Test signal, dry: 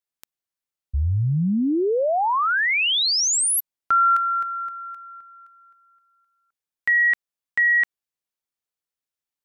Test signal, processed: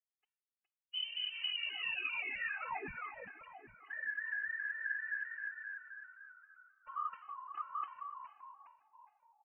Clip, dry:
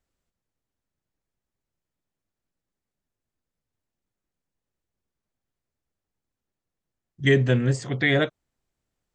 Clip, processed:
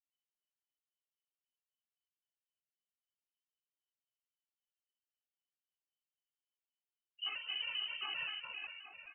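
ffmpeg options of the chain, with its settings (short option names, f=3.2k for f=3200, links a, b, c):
-filter_complex "[0:a]bandreject=f=128.2:t=h:w=4,bandreject=f=256.4:t=h:w=4,bandreject=f=384.6:t=h:w=4,bandreject=f=512.8:t=h:w=4,bandreject=f=641:t=h:w=4,bandreject=f=769.2:t=h:w=4,bandreject=f=897.4:t=h:w=4,bandreject=f=1.0256k:t=h:w=4,bandreject=f=1.1538k:t=h:w=4,bandreject=f=1.282k:t=h:w=4,bandreject=f=1.4102k:t=h:w=4,bandreject=f=1.5384k:t=h:w=4,bandreject=f=1.6666k:t=h:w=4,bandreject=f=1.7948k:t=h:w=4,bandreject=f=1.923k:t=h:w=4,bandreject=f=2.0512k:t=h:w=4,bandreject=f=2.1794k:t=h:w=4,bandreject=f=2.3076k:t=h:w=4,agate=range=-26dB:threshold=-54dB:ratio=16:release=127:detection=peak,tiltshelf=f=1.2k:g=3.5,aecho=1:1:2.3:0.87,areverse,acompressor=threshold=-24dB:ratio=16:attack=4.5:release=434:knee=1:detection=peak,areverse,alimiter=limit=-24dB:level=0:latency=1:release=467,asoftclip=type=hard:threshold=-39.5dB,afftfilt=real='hypot(re,im)*cos(2*PI*random(0))':imag='hypot(re,im)*sin(2*PI*random(1))':win_size=512:overlap=0.75,asplit=6[a][b][c][d][e][f];[b]adelay=413,afreqshift=74,volume=-6dB[g];[c]adelay=826,afreqshift=148,volume=-13.5dB[h];[d]adelay=1239,afreqshift=222,volume=-21.1dB[i];[e]adelay=1652,afreqshift=296,volume=-28.6dB[j];[f]adelay=2065,afreqshift=370,volume=-36.1dB[k];[a][g][h][i][j][k]amix=inputs=6:normalize=0,lowpass=f=2.6k:t=q:w=0.5098,lowpass=f=2.6k:t=q:w=0.6013,lowpass=f=2.6k:t=q:w=0.9,lowpass=f=2.6k:t=q:w=2.563,afreqshift=-3100,afftfilt=real='re*gt(sin(2*PI*3.8*pts/sr)*(1-2*mod(floor(b*sr/1024/220),2)),0)':imag='im*gt(sin(2*PI*3.8*pts/sr)*(1-2*mod(floor(b*sr/1024/220),2)),0)':win_size=1024:overlap=0.75,volume=9dB"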